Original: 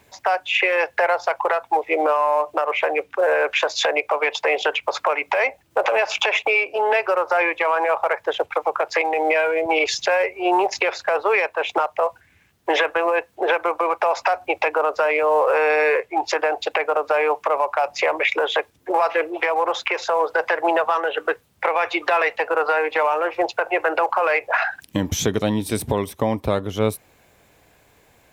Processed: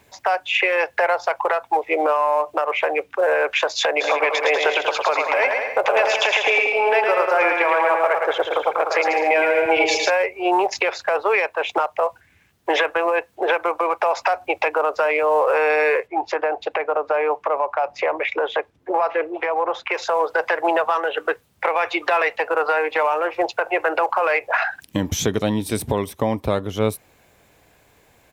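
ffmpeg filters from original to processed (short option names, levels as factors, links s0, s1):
-filter_complex "[0:a]asplit=3[s0][s1][s2];[s0]afade=t=out:st=4:d=0.02[s3];[s1]aecho=1:1:110|192.5|254.4|300.8|335.6:0.631|0.398|0.251|0.158|0.1,afade=t=in:st=4:d=0.02,afade=t=out:st=10.09:d=0.02[s4];[s2]afade=t=in:st=10.09:d=0.02[s5];[s3][s4][s5]amix=inputs=3:normalize=0,asplit=3[s6][s7][s8];[s6]afade=t=out:st=16.06:d=0.02[s9];[s7]lowpass=f=1600:p=1,afade=t=in:st=16.06:d=0.02,afade=t=out:st=19.89:d=0.02[s10];[s8]afade=t=in:st=19.89:d=0.02[s11];[s9][s10][s11]amix=inputs=3:normalize=0"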